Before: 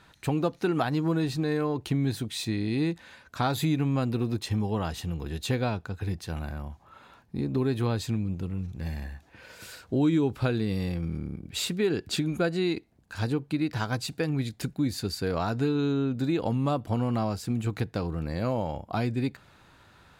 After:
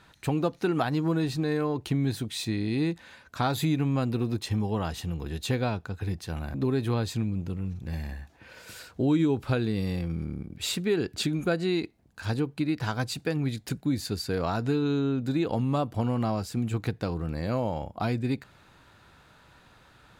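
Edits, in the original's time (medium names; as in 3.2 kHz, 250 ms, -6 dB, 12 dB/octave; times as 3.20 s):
6.54–7.47 s: delete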